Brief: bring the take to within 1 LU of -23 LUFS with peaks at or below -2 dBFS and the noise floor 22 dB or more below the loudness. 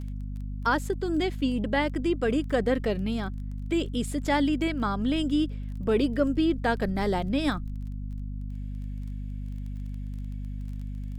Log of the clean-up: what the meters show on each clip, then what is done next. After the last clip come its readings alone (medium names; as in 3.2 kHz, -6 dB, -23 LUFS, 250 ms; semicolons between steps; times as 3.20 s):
tick rate 22 per s; hum 50 Hz; highest harmonic 250 Hz; hum level -31 dBFS; loudness -29.0 LUFS; peak level -11.0 dBFS; loudness target -23.0 LUFS
-> de-click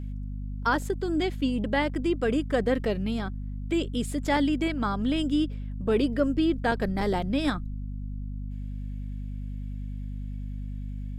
tick rate 0.45 per s; hum 50 Hz; highest harmonic 250 Hz; hum level -31 dBFS
-> de-hum 50 Hz, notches 5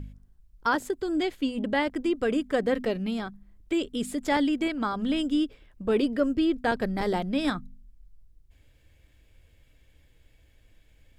hum not found; loudness -28.0 LUFS; peak level -12.0 dBFS; loudness target -23.0 LUFS
-> trim +5 dB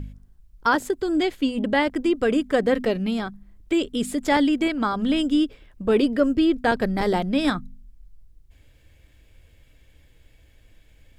loudness -23.0 LUFS; peak level -7.0 dBFS; noise floor -56 dBFS